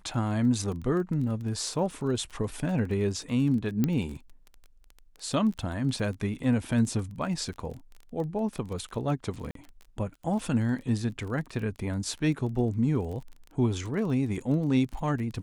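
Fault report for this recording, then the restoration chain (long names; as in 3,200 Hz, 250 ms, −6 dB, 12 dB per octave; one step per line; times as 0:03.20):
surface crackle 21 per second −36 dBFS
0:03.84: click −13 dBFS
0:09.51–0:09.55: drop-out 43 ms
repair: click removal
repair the gap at 0:09.51, 43 ms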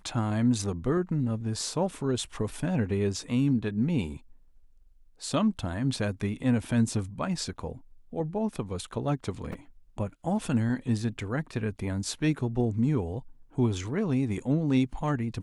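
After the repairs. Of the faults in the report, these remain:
none of them is left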